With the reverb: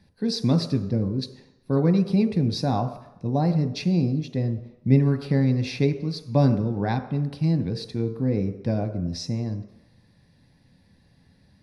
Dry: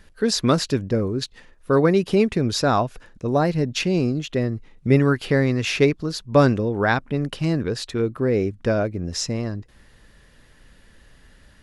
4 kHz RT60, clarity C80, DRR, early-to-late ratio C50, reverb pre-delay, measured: 0.90 s, 12.5 dB, 6.5 dB, 11.0 dB, 3 ms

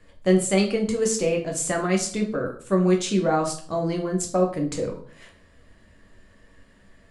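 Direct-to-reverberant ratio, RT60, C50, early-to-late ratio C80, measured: 1.0 dB, 0.50 s, 10.0 dB, 14.0 dB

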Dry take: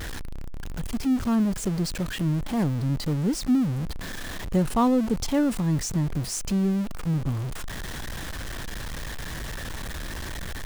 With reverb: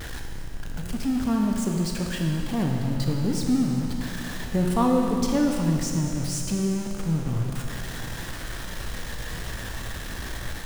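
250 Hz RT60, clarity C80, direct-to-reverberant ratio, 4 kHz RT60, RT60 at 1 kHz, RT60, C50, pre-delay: 2.7 s, 3.0 dB, 0.5 dB, 2.6 s, 2.7 s, 2.7 s, 1.5 dB, 17 ms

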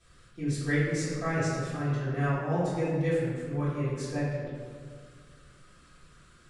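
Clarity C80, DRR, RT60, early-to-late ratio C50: 1.0 dB, −12.0 dB, 1.8 s, −1.5 dB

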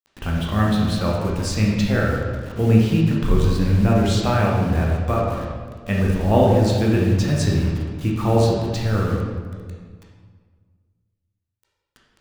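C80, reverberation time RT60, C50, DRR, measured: 2.5 dB, 1.6 s, 0.5 dB, −3.5 dB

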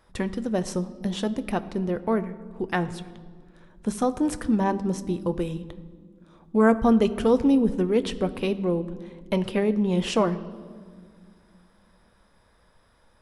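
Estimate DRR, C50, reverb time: 11.0 dB, 15.5 dB, 1.9 s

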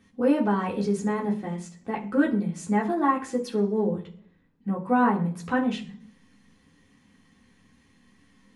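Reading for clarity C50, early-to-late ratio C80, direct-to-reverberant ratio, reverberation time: 12.5 dB, 17.0 dB, −4.5 dB, 0.50 s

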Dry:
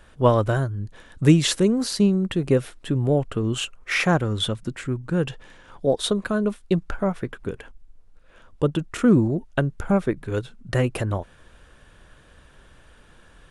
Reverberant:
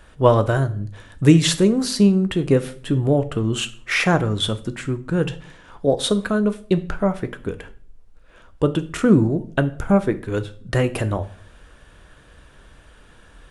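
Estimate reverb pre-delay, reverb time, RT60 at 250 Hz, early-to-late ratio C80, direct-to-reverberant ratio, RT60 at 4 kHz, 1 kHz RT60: 3 ms, 0.50 s, 0.65 s, 21.0 dB, 10.0 dB, 0.40 s, 0.45 s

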